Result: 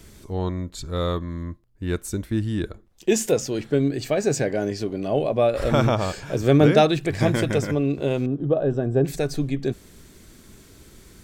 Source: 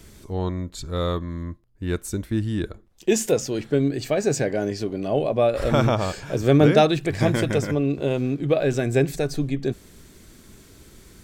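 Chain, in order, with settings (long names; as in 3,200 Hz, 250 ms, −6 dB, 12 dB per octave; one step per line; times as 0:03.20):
0:08.26–0:09.05: moving average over 20 samples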